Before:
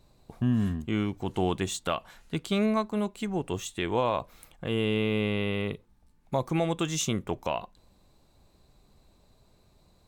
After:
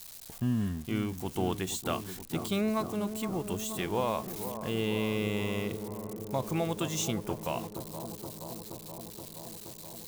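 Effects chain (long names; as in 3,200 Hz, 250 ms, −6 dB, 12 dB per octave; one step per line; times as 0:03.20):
spike at every zero crossing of −31 dBFS
on a send: bucket-brigade delay 474 ms, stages 4,096, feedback 78%, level −10 dB
on the sum: level −4 dB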